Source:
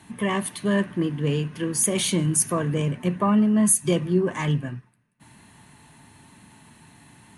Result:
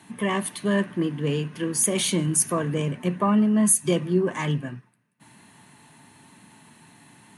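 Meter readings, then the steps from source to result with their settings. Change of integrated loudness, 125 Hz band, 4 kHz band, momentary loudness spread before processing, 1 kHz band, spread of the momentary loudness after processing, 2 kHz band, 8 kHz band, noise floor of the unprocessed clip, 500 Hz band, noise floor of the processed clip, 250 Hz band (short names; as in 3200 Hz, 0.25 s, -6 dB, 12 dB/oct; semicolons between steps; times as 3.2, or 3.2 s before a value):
-0.5 dB, -2.0 dB, 0.0 dB, 8 LU, 0.0 dB, 8 LU, 0.0 dB, 0.0 dB, -56 dBFS, 0.0 dB, -57 dBFS, -1.0 dB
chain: HPF 140 Hz 12 dB/oct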